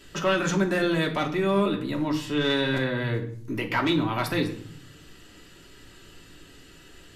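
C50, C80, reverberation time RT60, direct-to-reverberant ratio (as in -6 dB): 10.5 dB, 14.5 dB, 0.60 s, 1.0 dB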